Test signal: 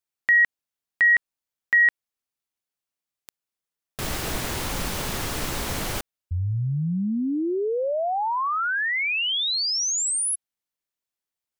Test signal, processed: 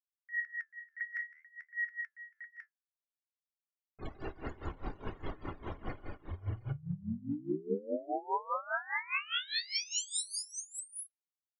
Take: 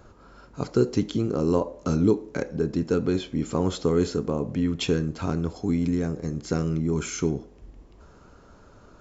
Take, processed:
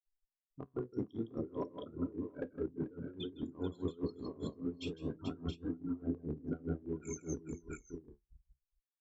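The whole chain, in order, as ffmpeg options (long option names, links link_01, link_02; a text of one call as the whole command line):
ffmpeg -i in.wav -filter_complex "[0:a]bandreject=frequency=60:width_type=h:width=6,bandreject=frequency=120:width_type=h:width=6,bandreject=frequency=180:width_type=h:width=6,bandreject=frequency=240:width_type=h:width=6,afftfilt=real='re*gte(hypot(re,im),0.0501)':imag='im*gte(hypot(re,im),0.0501)':win_size=1024:overlap=0.75,bandreject=frequency=700:width=12,anlmdn=1.58,adynamicequalizer=threshold=0.00891:dfrequency=270:dqfactor=8:tfrequency=270:tqfactor=8:attack=5:release=100:ratio=0.417:range=3:mode=boostabove:tftype=bell,aecho=1:1:2.8:0.33,areverse,acompressor=threshold=-29dB:ratio=8:attack=0.38:release=272:knee=1:detection=peak,areverse,flanger=delay=9.1:depth=6.4:regen=70:speed=0.58:shape=sinusoidal,asplit=2[link_01][link_02];[link_02]aecho=0:1:52|159|438|678|713:0.119|0.596|0.237|0.251|0.447[link_03];[link_01][link_03]amix=inputs=2:normalize=0,aeval=exprs='val(0)*pow(10,-21*(0.5-0.5*cos(2*PI*4.9*n/s))/20)':channel_layout=same,volume=2.5dB" out.wav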